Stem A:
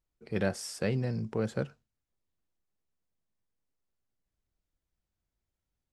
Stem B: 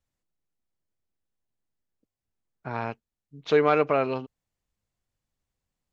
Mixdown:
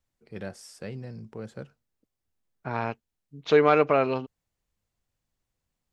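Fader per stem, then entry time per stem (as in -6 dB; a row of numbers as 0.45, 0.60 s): -7.5, +1.5 dB; 0.00, 0.00 s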